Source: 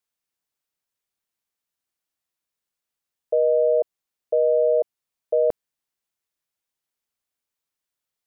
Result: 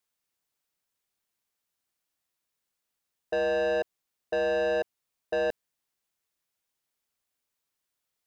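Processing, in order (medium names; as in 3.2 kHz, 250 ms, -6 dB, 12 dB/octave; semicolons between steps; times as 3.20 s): saturation -26.5 dBFS, distortion -8 dB; trim +2 dB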